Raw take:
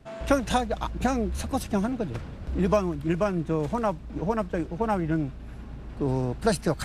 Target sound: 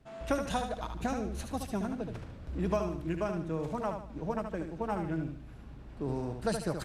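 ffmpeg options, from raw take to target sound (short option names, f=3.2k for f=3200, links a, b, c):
-af "aecho=1:1:74|148|222|296:0.473|0.166|0.058|0.0203,volume=-8.5dB"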